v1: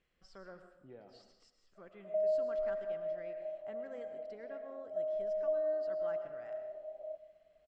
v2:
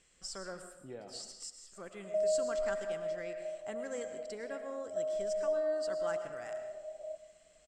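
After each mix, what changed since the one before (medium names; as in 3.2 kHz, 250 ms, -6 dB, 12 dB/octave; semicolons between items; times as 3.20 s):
speech +6.5 dB; master: remove distance through air 270 m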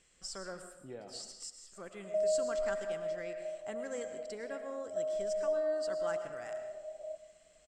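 no change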